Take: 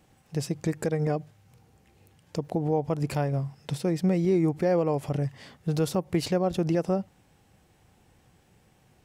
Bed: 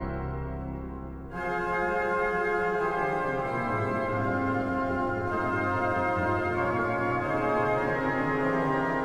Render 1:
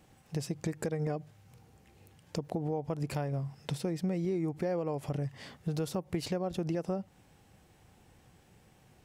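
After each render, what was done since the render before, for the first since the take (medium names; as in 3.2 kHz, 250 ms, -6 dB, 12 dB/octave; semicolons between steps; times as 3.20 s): compression 3:1, threshold -32 dBFS, peak gain reduction 10 dB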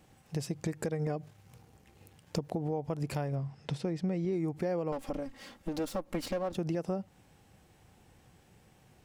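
1.23–2.39 s: waveshaping leveller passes 1; 3.35–4.33 s: distance through air 67 m; 4.92–6.55 s: comb filter that takes the minimum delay 3.7 ms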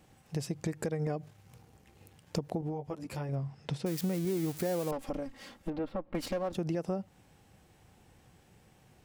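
2.61–3.29 s: three-phase chorus; 3.86–4.91 s: zero-crossing glitches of -29.5 dBFS; 5.70–6.15 s: distance through air 430 m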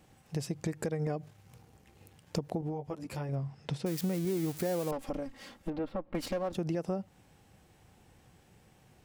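no audible change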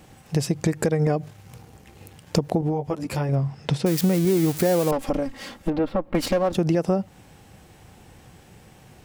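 trim +12 dB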